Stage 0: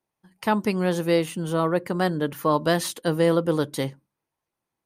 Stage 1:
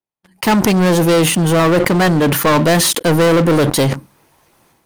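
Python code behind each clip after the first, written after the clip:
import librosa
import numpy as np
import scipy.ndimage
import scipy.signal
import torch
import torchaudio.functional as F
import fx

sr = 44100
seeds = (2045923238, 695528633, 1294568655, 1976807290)

y = fx.leveller(x, sr, passes=5)
y = fx.sustainer(y, sr, db_per_s=49.0)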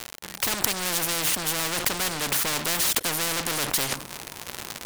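y = fx.dmg_crackle(x, sr, seeds[0], per_s=120.0, level_db=-25.0)
y = fx.spectral_comp(y, sr, ratio=4.0)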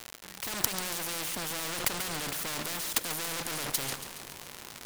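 y = fx.level_steps(x, sr, step_db=11)
y = fx.echo_feedback(y, sr, ms=140, feedback_pct=60, wet_db=-11)
y = y * 10.0 ** (-2.5 / 20.0)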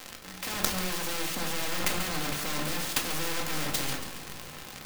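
y = fx.room_shoebox(x, sr, seeds[1], volume_m3=500.0, walls='furnished', distance_m=2.1)
y = fx.clock_jitter(y, sr, seeds[2], jitter_ms=0.021)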